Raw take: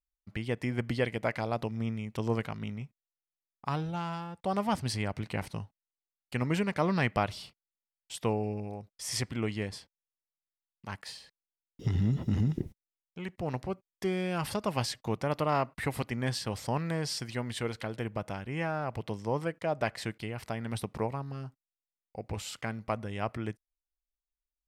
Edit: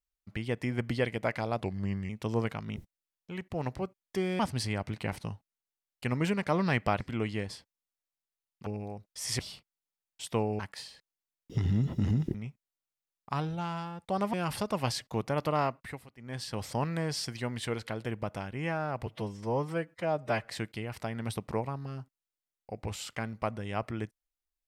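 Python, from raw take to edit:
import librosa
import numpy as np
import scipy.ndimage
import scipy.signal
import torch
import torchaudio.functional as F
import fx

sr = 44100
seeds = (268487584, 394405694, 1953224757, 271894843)

y = fx.edit(x, sr, fx.speed_span(start_s=1.6, length_s=0.43, speed=0.87),
    fx.swap(start_s=2.7, length_s=1.99, other_s=12.64, other_length_s=1.63),
    fx.swap(start_s=7.3, length_s=1.2, other_s=9.23, other_length_s=1.66),
    fx.fade_down_up(start_s=15.52, length_s=1.06, db=-20.5, fade_s=0.48),
    fx.stretch_span(start_s=19.0, length_s=0.95, factor=1.5), tone=tone)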